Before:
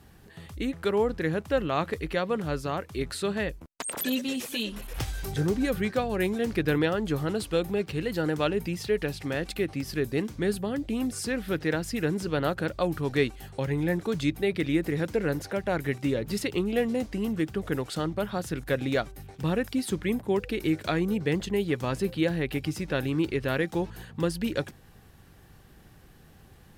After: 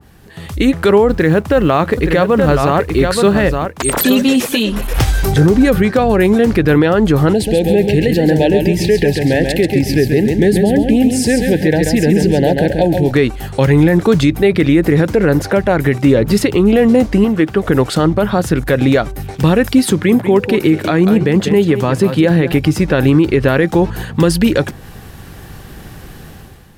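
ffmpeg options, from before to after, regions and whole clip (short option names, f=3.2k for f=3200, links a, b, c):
-filter_complex "[0:a]asettb=1/sr,asplit=3[a][b][c];[a]atrim=end=1.104[d];[b]atrim=start=1.1:end=4.23,asetpts=PTS-STARTPTS,afade=t=in:d=0.004:c=qsin,afade=t=out:st=3.126:d=0.004:c=qsin,acrusher=bits=8:mode=log:mix=0:aa=0.000001,aecho=1:1:873:0.398,atrim=end_sample=138033[e];[c]atrim=start=4.226[f];[d][e]acrossfade=d=0.004:c1=hsin:c2=qsin[g];[g][f]acrossfade=d=0.004:c1=qsin:c2=hsin,asettb=1/sr,asplit=3[h][i][j];[h]atrim=end=7.334[k];[i]atrim=start=7.33:end=13.11,asetpts=PTS-STARTPTS,afade=t=in:d=0.004:c=qsin,afade=t=out:st=5.776:d=0.004:c=qsin,acompressor=threshold=-30dB:ratio=2:attack=3.2:release=140:knee=1:detection=peak,asuperstop=centerf=1200:order=12:qfactor=1.7,aecho=1:1:136|272|408|544:0.531|0.149|0.0416|0.0117,atrim=end_sample=254898[l];[j]atrim=start=13.106[m];[k][l]acrossfade=d=0.004:c1=hsin:c2=qsin[n];[n][m]acrossfade=d=0.004:c1=qsin:c2=hsin,asettb=1/sr,asplit=3[o][p][q];[o]atrim=end=17.244[r];[p]atrim=start=17.24:end=17.68,asetpts=PTS-STARTPTS,afade=t=in:d=0.004:c=qsin,afade=t=out:st=0.436:d=0.004:c=qsin,acrossover=split=3800[s][t];[t]acompressor=threshold=-57dB:ratio=4:attack=1:release=60[u];[s][u]amix=inputs=2:normalize=0,lowshelf=f=230:g=-9.5[v];[q]atrim=start=17.676[w];[r][v]acrossfade=d=0.004:c1=hsin:c2=qsin[x];[x][w]acrossfade=d=0.004:c1=qsin:c2=hsin,asettb=1/sr,asplit=3[y][z][aa];[y]atrim=end=19.904[ab];[z]atrim=start=19.9:end=22.52,asetpts=PTS-STARTPTS,afade=t=in:d=0.004:c=qsin,afade=t=out:st=2.616:d=0.004:c=qsin,highpass=f=86:w=0.5412,highpass=f=86:w=1.3066,aecho=1:1:193:0.237,atrim=end_sample=115542[ac];[aa]atrim=start=22.516[ad];[ab][ac]acrossfade=d=0.004:c1=hsin:c2=qsin[ae];[ae][ad]acrossfade=d=0.004:c1=qsin:c2=hsin,dynaudnorm=f=130:g=7:m=11.5dB,alimiter=level_in=10dB:limit=-1dB:release=50:level=0:latency=1,adynamicequalizer=threshold=0.0355:dfrequency=2000:dqfactor=0.7:tfrequency=2000:tqfactor=0.7:attack=5:release=100:ratio=0.375:range=3:mode=cutabove:tftype=highshelf,volume=-1dB"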